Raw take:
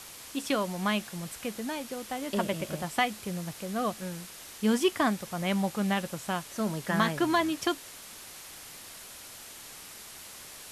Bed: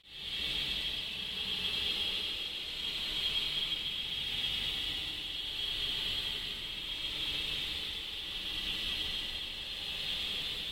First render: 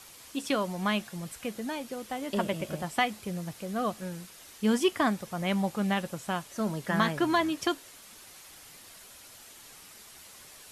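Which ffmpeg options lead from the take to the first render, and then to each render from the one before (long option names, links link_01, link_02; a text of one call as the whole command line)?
ffmpeg -i in.wav -af "afftdn=noise_reduction=6:noise_floor=-47" out.wav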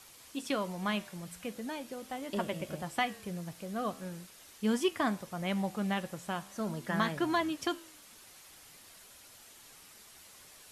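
ffmpeg -i in.wav -af "flanger=delay=7.3:depth=7.8:regen=-89:speed=0.41:shape=triangular" out.wav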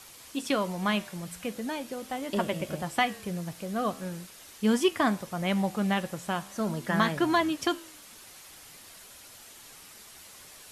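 ffmpeg -i in.wav -af "volume=5.5dB" out.wav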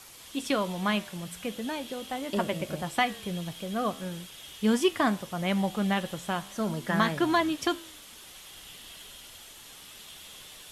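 ffmpeg -i in.wav -i bed.wav -filter_complex "[1:a]volume=-14dB[link_01];[0:a][link_01]amix=inputs=2:normalize=0" out.wav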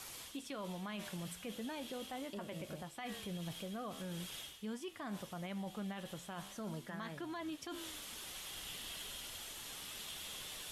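ffmpeg -i in.wav -af "areverse,acompressor=threshold=-36dB:ratio=10,areverse,alimiter=level_in=11.5dB:limit=-24dB:level=0:latency=1:release=115,volume=-11.5dB" out.wav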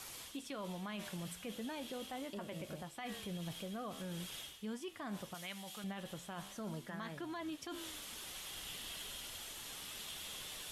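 ffmpeg -i in.wav -filter_complex "[0:a]asettb=1/sr,asplit=3[link_01][link_02][link_03];[link_01]atrim=end=5.344[link_04];[link_02]atrim=start=5.34:end=5.84,asetpts=PTS-STARTPTS,afade=type=in:duration=0.004:curve=qsin,afade=type=out:start_time=0.496:duration=0.004:curve=qsin,tiltshelf=frequency=1300:gain=-9.5[link_05];[link_03]atrim=start=5.836[link_06];[link_04][link_05]acrossfade=duration=0.004:curve1=hsin:curve2=qsin[link_07];[link_07][link_06]acrossfade=duration=0.004:curve1=qsin:curve2=hsin" out.wav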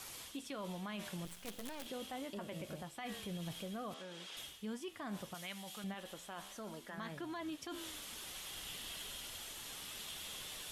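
ffmpeg -i in.wav -filter_complex "[0:a]asettb=1/sr,asplit=3[link_01][link_02][link_03];[link_01]atrim=end=1.254[link_04];[link_02]atrim=start=1.25:end=1.86,asetpts=PTS-STARTPTS,afade=type=in:duration=0.004:curve=qsin,afade=type=out:start_time=0.606:duration=0.004:curve=qsin,acrusher=bits=7:dc=4:mix=0:aa=0.000001[link_05];[link_03]atrim=start=1.856[link_06];[link_04][link_05]acrossfade=duration=0.004:curve1=hsin:curve2=qsin[link_07];[link_07][link_06]acrossfade=duration=0.004:curve1=qsin:curve2=hsin,asettb=1/sr,asplit=3[link_08][link_09][link_10];[link_08]atrim=end=3.944[link_11];[link_09]atrim=start=3.94:end=4.37,asetpts=PTS-STARTPTS,afade=type=in:duration=0.004:curve=qsin,afade=type=out:start_time=0.426:duration=0.004:curve=qsin,highpass=360,lowpass=5900[link_12];[link_10]atrim=start=4.366[link_13];[link_11][link_12]acrossfade=duration=0.004:curve1=hsin:curve2=qsin[link_14];[link_14][link_13]acrossfade=duration=0.004:curve1=qsin:curve2=hsin,asettb=1/sr,asplit=3[link_15][link_16][link_17];[link_15]atrim=end=5.944[link_18];[link_16]atrim=start=5.94:end=6.98,asetpts=PTS-STARTPTS,afade=type=in:duration=0.004:curve=qsin,afade=type=out:start_time=1.036:duration=0.004:curve=qsin,equalizer=frequency=130:width=1.2:gain=-14[link_19];[link_17]atrim=start=6.976[link_20];[link_18][link_19]acrossfade=duration=0.004:curve1=hsin:curve2=qsin[link_21];[link_21][link_20]acrossfade=duration=0.004:curve1=qsin:curve2=hsin" out.wav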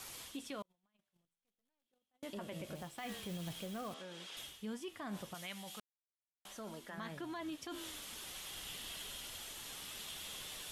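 ffmpeg -i in.wav -filter_complex "[0:a]asettb=1/sr,asplit=3[link_01][link_02][link_03];[link_01]atrim=end=0.624[link_04];[link_02]atrim=start=0.62:end=2.23,asetpts=PTS-STARTPTS,afade=type=in:duration=0.004:curve=qsin,afade=type=out:start_time=1.606:duration=0.004:curve=qsin,agate=range=-43dB:threshold=-39dB:ratio=16:release=100:detection=peak[link_05];[link_03]atrim=start=2.226[link_06];[link_04][link_05]acrossfade=duration=0.004:curve1=hsin:curve2=qsin[link_07];[link_07][link_06]acrossfade=duration=0.004:curve1=qsin:curve2=hsin,asettb=1/sr,asplit=3[link_08][link_09][link_10];[link_08]atrim=end=2.754[link_11];[link_09]atrim=start=2.75:end=3.93,asetpts=PTS-STARTPTS,afade=type=in:duration=0.004:curve=qsin,afade=type=out:start_time=1.176:duration=0.004:curve=qsin,acrusher=bits=3:mode=log:mix=0:aa=0.000001[link_12];[link_10]atrim=start=3.926[link_13];[link_11][link_12]acrossfade=duration=0.004:curve1=hsin:curve2=qsin[link_14];[link_14][link_13]acrossfade=duration=0.004:curve1=qsin:curve2=hsin,asplit=3[link_15][link_16][link_17];[link_15]atrim=end=5.8,asetpts=PTS-STARTPTS,afade=type=out:start_time=5.796:duration=0.004:curve=hsin[link_18];[link_16]atrim=start=5.8:end=6.45,asetpts=PTS-STARTPTS,volume=0[link_19];[link_17]atrim=start=6.45,asetpts=PTS-STARTPTS,afade=type=in:duration=0.004:curve=hsin[link_20];[link_18][link_19][link_20]concat=n=3:v=0:a=1" out.wav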